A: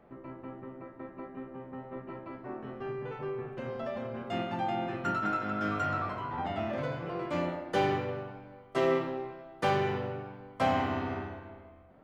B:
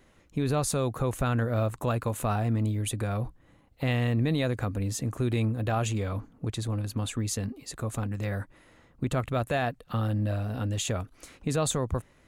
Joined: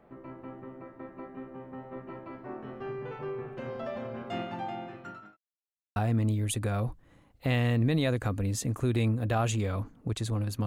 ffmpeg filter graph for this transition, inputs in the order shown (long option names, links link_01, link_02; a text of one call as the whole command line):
ffmpeg -i cue0.wav -i cue1.wav -filter_complex "[0:a]apad=whole_dur=10.66,atrim=end=10.66,asplit=2[link_01][link_02];[link_01]atrim=end=5.37,asetpts=PTS-STARTPTS,afade=type=out:start_time=4.23:duration=1.14[link_03];[link_02]atrim=start=5.37:end=5.96,asetpts=PTS-STARTPTS,volume=0[link_04];[1:a]atrim=start=2.33:end=7.03,asetpts=PTS-STARTPTS,afade=type=in:duration=0.004:curve=hsin[link_05];[link_03][link_04][link_05]concat=n=3:v=0:a=1" out.wav